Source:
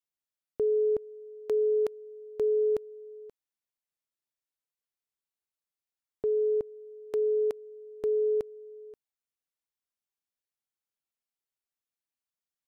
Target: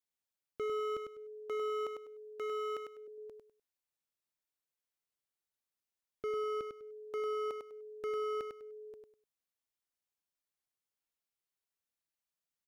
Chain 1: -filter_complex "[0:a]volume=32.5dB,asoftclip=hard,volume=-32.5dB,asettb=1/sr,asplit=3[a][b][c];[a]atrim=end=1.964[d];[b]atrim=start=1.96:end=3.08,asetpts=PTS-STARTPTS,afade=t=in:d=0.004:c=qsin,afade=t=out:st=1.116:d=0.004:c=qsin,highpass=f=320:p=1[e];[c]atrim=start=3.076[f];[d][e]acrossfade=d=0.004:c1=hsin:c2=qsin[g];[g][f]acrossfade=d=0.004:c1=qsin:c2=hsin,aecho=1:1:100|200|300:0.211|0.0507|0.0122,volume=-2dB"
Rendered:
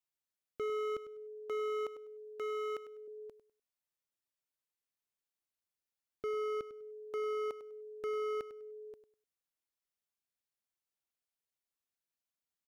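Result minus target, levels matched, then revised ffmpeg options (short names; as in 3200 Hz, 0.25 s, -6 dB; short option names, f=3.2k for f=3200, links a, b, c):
echo-to-direct -8 dB
-filter_complex "[0:a]volume=32.5dB,asoftclip=hard,volume=-32.5dB,asettb=1/sr,asplit=3[a][b][c];[a]atrim=end=1.964[d];[b]atrim=start=1.96:end=3.08,asetpts=PTS-STARTPTS,afade=t=in:d=0.004:c=qsin,afade=t=out:st=1.116:d=0.004:c=qsin,highpass=f=320:p=1[e];[c]atrim=start=3.076[f];[d][e]acrossfade=d=0.004:c1=hsin:c2=qsin[g];[g][f]acrossfade=d=0.004:c1=qsin:c2=hsin,aecho=1:1:100|200|300:0.531|0.127|0.0306,volume=-2dB"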